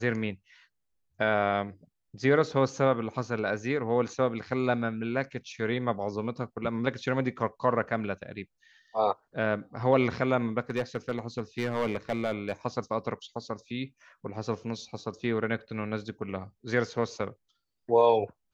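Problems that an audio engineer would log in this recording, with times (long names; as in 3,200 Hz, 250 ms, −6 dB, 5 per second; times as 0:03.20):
0:10.70–0:12.53: clipping −22.5 dBFS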